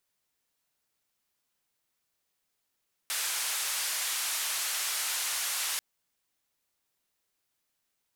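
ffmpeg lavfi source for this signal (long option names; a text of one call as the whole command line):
ffmpeg -f lavfi -i "anoisesrc=color=white:duration=2.69:sample_rate=44100:seed=1,highpass=frequency=1000,lowpass=frequency=12000,volume=-24.1dB" out.wav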